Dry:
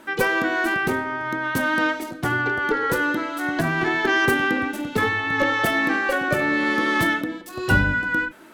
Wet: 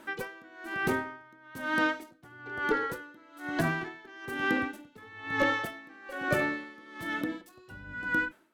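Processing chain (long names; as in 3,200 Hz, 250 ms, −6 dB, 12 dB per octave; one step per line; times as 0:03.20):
tremolo with a sine in dB 1.1 Hz, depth 25 dB
level −5 dB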